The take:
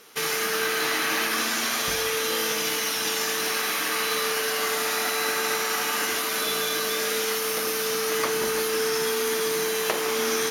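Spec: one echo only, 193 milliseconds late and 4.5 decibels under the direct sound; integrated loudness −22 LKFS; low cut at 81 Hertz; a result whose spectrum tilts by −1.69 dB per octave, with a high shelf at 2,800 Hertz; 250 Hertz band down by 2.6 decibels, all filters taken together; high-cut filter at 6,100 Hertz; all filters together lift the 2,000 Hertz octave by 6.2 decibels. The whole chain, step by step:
high-pass filter 81 Hz
low-pass filter 6,100 Hz
parametric band 250 Hz −3.5 dB
parametric band 2,000 Hz +6 dB
high-shelf EQ 2,800 Hz +4.5 dB
single-tap delay 193 ms −4.5 dB
level −2 dB

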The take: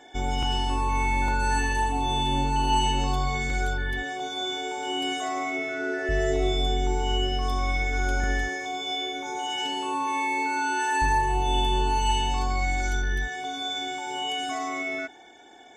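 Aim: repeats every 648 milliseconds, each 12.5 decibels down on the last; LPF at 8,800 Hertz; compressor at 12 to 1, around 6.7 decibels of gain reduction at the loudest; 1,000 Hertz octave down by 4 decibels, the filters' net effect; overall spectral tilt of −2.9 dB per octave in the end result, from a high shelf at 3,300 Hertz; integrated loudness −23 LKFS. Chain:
low-pass filter 8,800 Hz
parametric band 1,000 Hz −5.5 dB
high-shelf EQ 3,300 Hz +7 dB
downward compressor 12 to 1, threshold −27 dBFS
repeating echo 648 ms, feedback 24%, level −12.5 dB
level +8 dB

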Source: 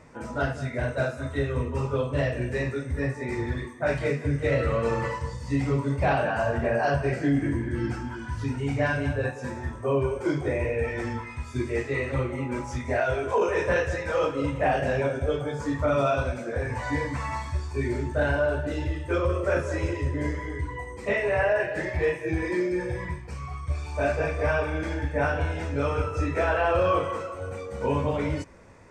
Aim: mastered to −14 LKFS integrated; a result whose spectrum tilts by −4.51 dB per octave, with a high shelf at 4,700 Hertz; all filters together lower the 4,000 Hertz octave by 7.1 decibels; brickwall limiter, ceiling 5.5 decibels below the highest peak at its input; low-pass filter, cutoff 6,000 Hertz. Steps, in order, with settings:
low-pass filter 6,000 Hz
parametric band 4,000 Hz −6 dB
high-shelf EQ 4,700 Hz −7.5 dB
level +15 dB
brickwall limiter −3 dBFS

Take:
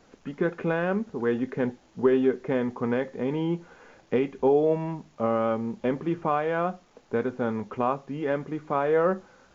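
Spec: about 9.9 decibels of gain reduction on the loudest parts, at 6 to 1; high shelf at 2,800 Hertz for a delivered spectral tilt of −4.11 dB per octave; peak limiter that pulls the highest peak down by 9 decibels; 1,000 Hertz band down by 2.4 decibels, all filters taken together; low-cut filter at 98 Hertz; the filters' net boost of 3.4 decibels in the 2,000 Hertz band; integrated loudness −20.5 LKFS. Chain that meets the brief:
high-pass filter 98 Hz
parametric band 1,000 Hz −5 dB
parametric band 2,000 Hz +8.5 dB
high-shelf EQ 2,800 Hz −4.5 dB
downward compressor 6 to 1, threshold −28 dBFS
level +15.5 dB
brickwall limiter −9 dBFS

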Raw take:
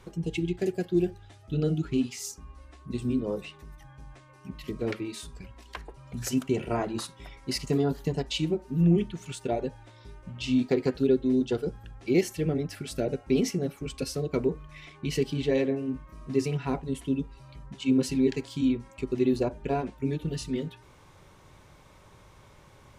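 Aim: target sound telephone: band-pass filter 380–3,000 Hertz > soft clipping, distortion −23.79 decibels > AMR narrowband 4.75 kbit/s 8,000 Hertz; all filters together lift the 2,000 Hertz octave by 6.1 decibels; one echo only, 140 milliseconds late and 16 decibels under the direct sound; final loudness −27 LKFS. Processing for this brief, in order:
band-pass filter 380–3,000 Hz
parametric band 2,000 Hz +9 dB
single-tap delay 140 ms −16 dB
soft clipping −17 dBFS
level +8 dB
AMR narrowband 4.75 kbit/s 8,000 Hz

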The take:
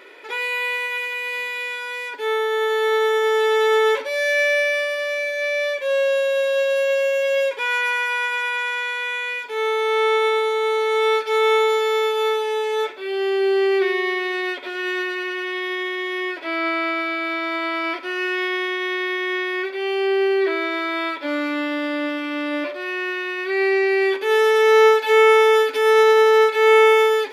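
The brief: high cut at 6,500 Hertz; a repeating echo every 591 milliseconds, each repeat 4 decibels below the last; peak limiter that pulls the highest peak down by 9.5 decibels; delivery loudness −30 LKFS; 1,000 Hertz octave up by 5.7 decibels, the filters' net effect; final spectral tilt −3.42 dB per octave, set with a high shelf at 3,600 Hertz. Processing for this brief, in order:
low-pass filter 6,500 Hz
parametric band 1,000 Hz +7 dB
high-shelf EQ 3,600 Hz +4 dB
brickwall limiter −12.5 dBFS
repeating echo 591 ms, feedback 63%, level −4 dB
level −12 dB

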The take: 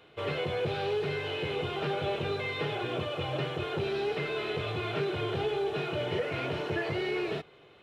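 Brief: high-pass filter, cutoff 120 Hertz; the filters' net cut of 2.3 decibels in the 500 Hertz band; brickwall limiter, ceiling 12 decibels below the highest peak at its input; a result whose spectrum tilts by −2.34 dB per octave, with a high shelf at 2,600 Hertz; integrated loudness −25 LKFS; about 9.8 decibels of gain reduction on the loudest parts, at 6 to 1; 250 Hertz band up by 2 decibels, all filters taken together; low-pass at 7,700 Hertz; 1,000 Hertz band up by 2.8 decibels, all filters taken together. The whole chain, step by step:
high-pass filter 120 Hz
low-pass filter 7,700 Hz
parametric band 250 Hz +8 dB
parametric band 500 Hz −7.5 dB
parametric band 1,000 Hz +4.5 dB
high-shelf EQ 2,600 Hz +9 dB
downward compressor 6 to 1, threshold −38 dBFS
level +22 dB
brickwall limiter −18 dBFS

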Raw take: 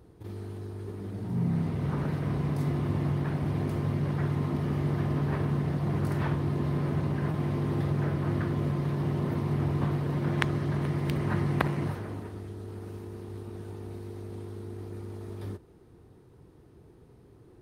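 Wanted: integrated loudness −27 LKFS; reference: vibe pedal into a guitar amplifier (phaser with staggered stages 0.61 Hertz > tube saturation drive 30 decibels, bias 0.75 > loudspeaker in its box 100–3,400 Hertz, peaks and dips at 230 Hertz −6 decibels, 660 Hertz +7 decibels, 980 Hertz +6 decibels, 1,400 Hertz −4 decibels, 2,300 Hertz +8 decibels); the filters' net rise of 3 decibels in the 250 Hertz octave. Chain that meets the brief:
parametric band 250 Hz +8 dB
phaser with staggered stages 0.61 Hz
tube saturation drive 30 dB, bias 0.75
loudspeaker in its box 100–3,400 Hz, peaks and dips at 230 Hz −6 dB, 660 Hz +7 dB, 980 Hz +6 dB, 1,400 Hz −4 dB, 2,300 Hz +8 dB
level +10.5 dB

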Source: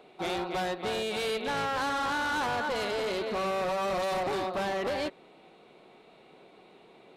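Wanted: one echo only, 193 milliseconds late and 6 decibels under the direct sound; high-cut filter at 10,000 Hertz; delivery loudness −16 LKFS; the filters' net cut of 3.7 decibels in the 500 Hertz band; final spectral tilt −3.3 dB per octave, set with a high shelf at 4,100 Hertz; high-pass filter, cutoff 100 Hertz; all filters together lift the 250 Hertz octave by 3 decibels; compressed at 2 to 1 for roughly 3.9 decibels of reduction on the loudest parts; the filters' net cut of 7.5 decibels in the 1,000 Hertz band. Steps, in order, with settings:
high-pass filter 100 Hz
low-pass filter 10,000 Hz
parametric band 250 Hz +6.5 dB
parametric band 500 Hz −4 dB
parametric band 1,000 Hz −9 dB
high-shelf EQ 4,100 Hz −7 dB
downward compressor 2 to 1, threshold −37 dBFS
single-tap delay 193 ms −6 dB
level +20.5 dB

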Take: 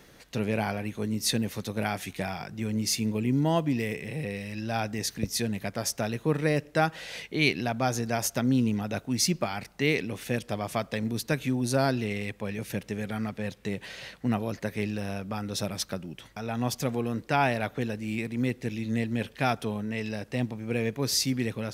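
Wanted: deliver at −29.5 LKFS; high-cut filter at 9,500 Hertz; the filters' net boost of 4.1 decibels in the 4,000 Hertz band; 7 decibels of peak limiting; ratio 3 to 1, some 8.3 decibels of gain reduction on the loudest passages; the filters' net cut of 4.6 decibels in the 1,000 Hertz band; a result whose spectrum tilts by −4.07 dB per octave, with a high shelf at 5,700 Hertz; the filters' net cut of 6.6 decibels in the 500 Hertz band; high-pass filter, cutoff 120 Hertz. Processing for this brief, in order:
high-pass filter 120 Hz
low-pass filter 9,500 Hz
parametric band 500 Hz −7.5 dB
parametric band 1,000 Hz −3.5 dB
parametric band 4,000 Hz +3.5 dB
high-shelf EQ 5,700 Hz +4.5 dB
downward compressor 3 to 1, threshold −30 dBFS
level +6 dB
brickwall limiter −16.5 dBFS

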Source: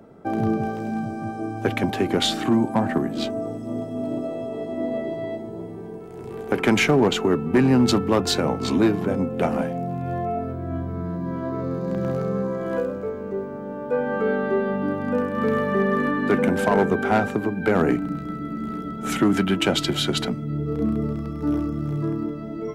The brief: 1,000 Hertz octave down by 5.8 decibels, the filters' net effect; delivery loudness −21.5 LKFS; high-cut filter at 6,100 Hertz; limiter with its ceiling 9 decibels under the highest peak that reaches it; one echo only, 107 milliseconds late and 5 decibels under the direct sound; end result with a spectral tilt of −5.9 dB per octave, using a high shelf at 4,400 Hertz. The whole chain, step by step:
low-pass filter 6,100 Hz
parametric band 1,000 Hz −8 dB
high-shelf EQ 4,400 Hz −7 dB
brickwall limiter −19.5 dBFS
single-tap delay 107 ms −5 dB
level +6 dB

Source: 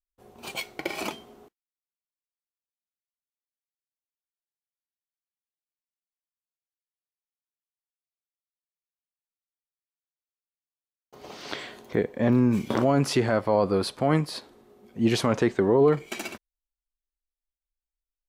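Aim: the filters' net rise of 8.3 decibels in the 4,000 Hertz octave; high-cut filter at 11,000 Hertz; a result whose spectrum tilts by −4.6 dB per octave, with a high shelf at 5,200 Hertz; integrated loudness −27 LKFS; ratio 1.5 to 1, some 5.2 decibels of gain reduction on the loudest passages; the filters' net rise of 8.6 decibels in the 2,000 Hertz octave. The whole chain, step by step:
low-pass filter 11,000 Hz
parametric band 2,000 Hz +8.5 dB
parametric band 4,000 Hz +6.5 dB
high-shelf EQ 5,200 Hz +3 dB
downward compressor 1.5 to 1, threshold −30 dBFS
level +1 dB

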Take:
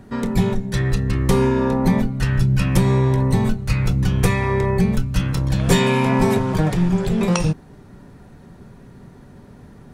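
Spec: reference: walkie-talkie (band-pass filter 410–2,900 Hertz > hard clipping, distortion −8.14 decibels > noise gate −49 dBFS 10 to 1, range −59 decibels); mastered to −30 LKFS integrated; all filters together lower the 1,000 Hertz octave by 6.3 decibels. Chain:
band-pass filter 410–2,900 Hz
parametric band 1,000 Hz −7 dB
hard clipping −27 dBFS
noise gate −49 dBFS 10 to 1, range −59 dB
level +1.5 dB

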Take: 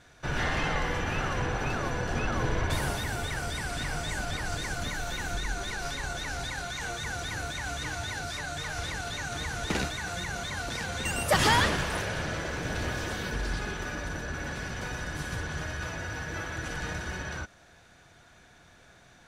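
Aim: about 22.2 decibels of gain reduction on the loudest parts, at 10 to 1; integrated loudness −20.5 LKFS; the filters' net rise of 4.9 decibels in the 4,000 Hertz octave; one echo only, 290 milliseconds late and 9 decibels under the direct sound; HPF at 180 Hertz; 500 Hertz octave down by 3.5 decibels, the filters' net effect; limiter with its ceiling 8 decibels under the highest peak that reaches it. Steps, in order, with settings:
high-pass filter 180 Hz
parametric band 500 Hz −4.5 dB
parametric band 4,000 Hz +6 dB
downward compressor 10 to 1, threshold −42 dBFS
brickwall limiter −39 dBFS
single-tap delay 290 ms −9 dB
level +26 dB

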